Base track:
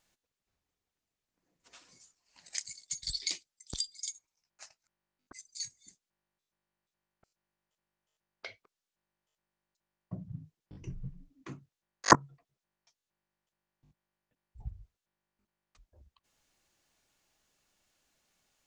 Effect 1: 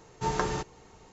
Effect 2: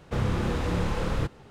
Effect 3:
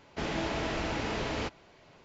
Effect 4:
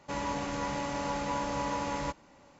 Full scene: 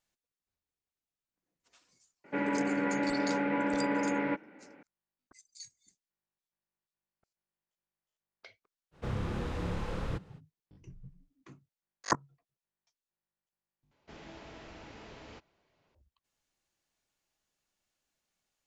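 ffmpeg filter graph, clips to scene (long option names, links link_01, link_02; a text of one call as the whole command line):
ffmpeg -i bed.wav -i cue0.wav -i cue1.wav -i cue2.wav -i cue3.wav -filter_complex "[0:a]volume=-9dB[link_01];[4:a]highpass=190,equalizer=frequency=200:width_type=q:width=4:gain=7,equalizer=frequency=300:width_type=q:width=4:gain=9,equalizer=frequency=430:width_type=q:width=4:gain=9,equalizer=frequency=1100:width_type=q:width=4:gain=-9,equalizer=frequency=1500:width_type=q:width=4:gain=9,equalizer=frequency=2200:width_type=q:width=4:gain=8,lowpass=frequency=2600:width=0.5412,lowpass=frequency=2600:width=1.3066[link_02];[2:a]highshelf=frequency=7400:gain=-5.5[link_03];[link_01]asplit=2[link_04][link_05];[link_04]atrim=end=13.914[link_06];[3:a]atrim=end=2.04,asetpts=PTS-STARTPTS,volume=-17dB[link_07];[link_05]atrim=start=15.946[link_08];[link_02]atrim=end=2.59,asetpts=PTS-STARTPTS,volume=-0.5dB,afade=type=in:duration=0.004:curve=hsin,afade=type=out:start_time=2.586:duration=0.004:curve=hsin,adelay=2240[link_09];[link_03]atrim=end=1.5,asetpts=PTS-STARTPTS,volume=-8dB,afade=type=in:duration=0.05,afade=type=out:start_time=1.45:duration=0.05,adelay=8910[link_10];[link_06][link_07]acrossfade=duration=0.004:curve1=hsin:curve2=hsin[link_11];[link_11][link_08]acrossfade=duration=0.004:curve1=hsin:curve2=hsin[link_12];[link_12][link_09][link_10]amix=inputs=3:normalize=0" out.wav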